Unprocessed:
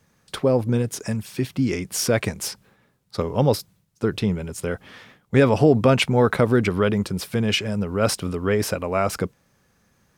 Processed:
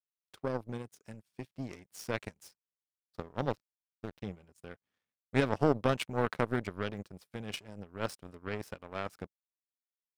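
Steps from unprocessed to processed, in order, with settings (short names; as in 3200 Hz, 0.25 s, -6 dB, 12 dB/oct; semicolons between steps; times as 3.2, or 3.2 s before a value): 3.5–4.22 backlash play -19.5 dBFS; power-law curve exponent 2; gain -7.5 dB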